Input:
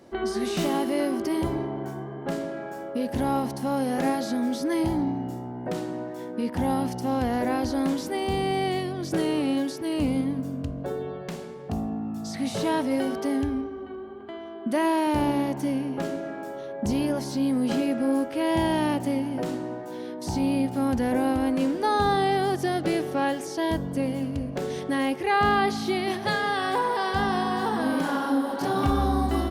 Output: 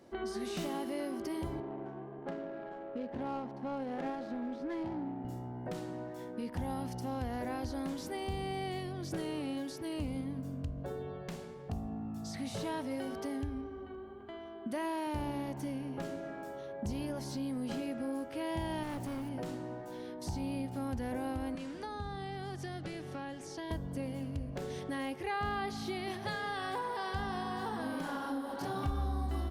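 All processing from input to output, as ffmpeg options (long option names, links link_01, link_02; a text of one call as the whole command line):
ffmpeg -i in.wav -filter_complex "[0:a]asettb=1/sr,asplit=3[link_01][link_02][link_03];[link_01]atrim=end=1.604[link_04];[link_02]atrim=start=1.6:end=5.25,asetpts=PTS-STARTPTS,afade=type=in:duration=0.004:curve=qsin,afade=type=out:start_time=3.646:duration=0.004:curve=qsin,highpass=200,adynamicsmooth=sensitivity=2.5:basefreq=1100[link_05];[link_03]atrim=start=5.246[link_06];[link_04][link_05]acrossfade=duration=0.004:curve1=hsin:curve2=qsin[link_07];[link_07][link_06]acrossfade=duration=0.004:curve1=qsin:curve2=hsin,asettb=1/sr,asplit=3[link_08][link_09][link_10];[link_08]atrim=end=18.834[link_11];[link_09]atrim=start=18.83:end=19.29,asetpts=PTS-STARTPTS,afade=type=in:duration=0.004:curve=qsin,afade=type=out:start_time=0.456:duration=0.004:curve=qsin,acrusher=bits=7:mix=0:aa=0.5,volume=25.5dB,asoftclip=hard,volume=-25.5dB[link_12];[link_10]atrim=start=19.286[link_13];[link_11][link_12]acrossfade=duration=0.004:curve1=hsin:curve2=qsin[link_14];[link_14][link_13]acrossfade=duration=0.004:curve1=qsin:curve2=hsin,asettb=1/sr,asplit=3[link_15][link_16][link_17];[link_15]atrim=end=21.554[link_18];[link_16]atrim=start=21.55:end=23.71,asetpts=PTS-STARTPTS,afade=type=in:duration=0.004:curve=qsin,afade=type=out:start_time=2.156:duration=0.004:curve=qsin,lowpass=9000,acrossover=split=250|980[link_19][link_20][link_21];[link_19]acompressor=threshold=-36dB:ratio=4[link_22];[link_20]acompressor=threshold=-38dB:ratio=4[link_23];[link_21]acompressor=threshold=-40dB:ratio=4[link_24];[link_22][link_23][link_24]amix=inputs=3:normalize=0[link_25];[link_17]atrim=start=23.706[link_26];[link_18][link_25]acrossfade=duration=0.004:curve1=hsin:curve2=qsin[link_27];[link_27][link_26]acrossfade=duration=0.004:curve1=qsin:curve2=hsin,asubboost=boost=2.5:cutoff=130,acompressor=threshold=-30dB:ratio=2,volume=-7dB" out.wav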